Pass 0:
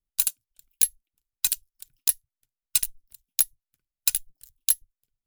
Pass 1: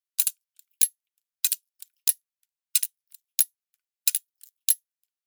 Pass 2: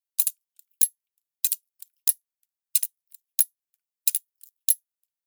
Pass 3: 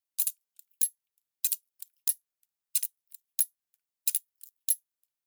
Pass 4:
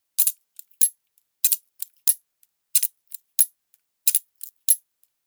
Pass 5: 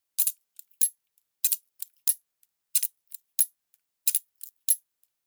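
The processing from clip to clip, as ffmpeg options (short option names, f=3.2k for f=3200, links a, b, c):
-af "highpass=1.5k"
-af "crystalizer=i=1:c=0,volume=-7dB"
-af "alimiter=limit=-10.5dB:level=0:latency=1:release=21"
-af "alimiter=level_in=13.5dB:limit=-1dB:release=50:level=0:latency=1,volume=-1dB"
-af "aeval=exprs='0.841*(cos(1*acos(clip(val(0)/0.841,-1,1)))-cos(1*PI/2))+0.0119*(cos(5*acos(clip(val(0)/0.841,-1,1)))-cos(5*PI/2))':c=same,volume=-5.5dB"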